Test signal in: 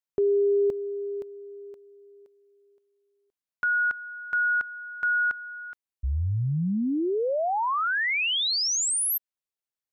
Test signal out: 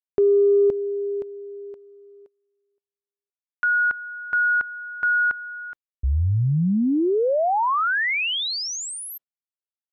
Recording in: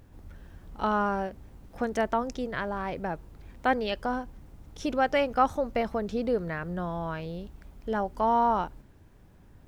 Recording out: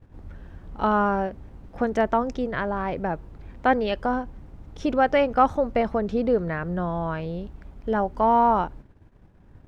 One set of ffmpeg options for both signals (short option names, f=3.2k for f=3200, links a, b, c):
-af "agate=range=-33dB:threshold=-52dB:ratio=3:release=64:detection=peak,acontrast=46,aemphasis=mode=reproduction:type=75kf"